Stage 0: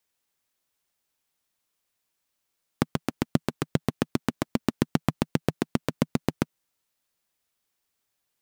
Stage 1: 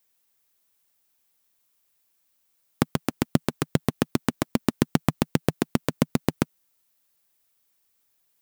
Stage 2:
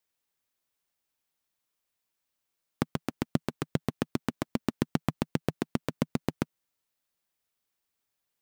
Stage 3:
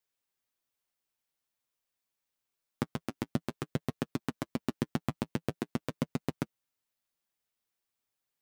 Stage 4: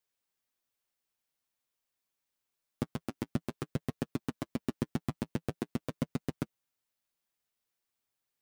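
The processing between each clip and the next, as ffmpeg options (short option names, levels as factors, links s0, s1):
-af "highshelf=f=11000:g=11,volume=1.33"
-af "highshelf=f=7900:g=-9,volume=0.473"
-af "flanger=delay=7:depth=2.1:regen=-29:speed=0.47:shape=triangular"
-af "aeval=exprs='clip(val(0),-1,0.0708)':c=same"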